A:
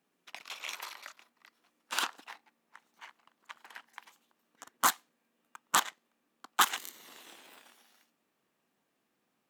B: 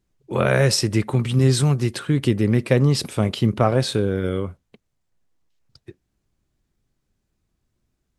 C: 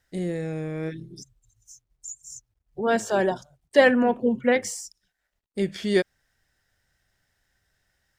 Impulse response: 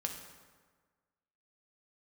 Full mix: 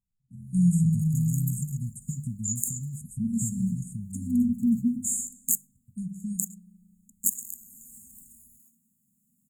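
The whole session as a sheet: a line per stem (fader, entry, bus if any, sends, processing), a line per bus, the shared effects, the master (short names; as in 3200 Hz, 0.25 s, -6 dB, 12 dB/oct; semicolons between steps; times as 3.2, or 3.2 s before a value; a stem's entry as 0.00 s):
+1.5 dB, 0.65 s, no send, dry
-14.0 dB, 0.00 s, no send, bell 610 Hz +15 dB 0.36 oct; compressor 4:1, threshold -25 dBFS, peak gain reduction 16 dB
-7.0 dB, 0.40 s, send -5 dB, compressor, threshold -22 dBFS, peak gain reduction 11 dB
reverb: on, RT60 1.5 s, pre-delay 3 ms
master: de-hum 49.65 Hz, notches 4; AGC gain up to 12.5 dB; brick-wall FIR band-stop 250–6600 Hz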